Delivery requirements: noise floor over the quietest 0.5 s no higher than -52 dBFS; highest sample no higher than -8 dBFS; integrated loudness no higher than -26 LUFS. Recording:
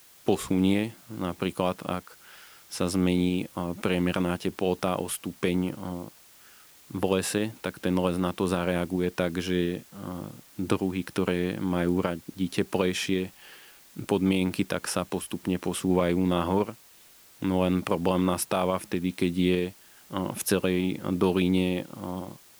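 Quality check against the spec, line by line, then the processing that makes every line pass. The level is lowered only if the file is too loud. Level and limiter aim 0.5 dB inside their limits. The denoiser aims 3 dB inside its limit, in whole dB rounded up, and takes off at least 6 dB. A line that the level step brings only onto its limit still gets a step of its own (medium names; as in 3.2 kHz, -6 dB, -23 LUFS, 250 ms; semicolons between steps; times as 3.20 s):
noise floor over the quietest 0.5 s -54 dBFS: pass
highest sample -10.0 dBFS: pass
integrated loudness -28.0 LUFS: pass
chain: none needed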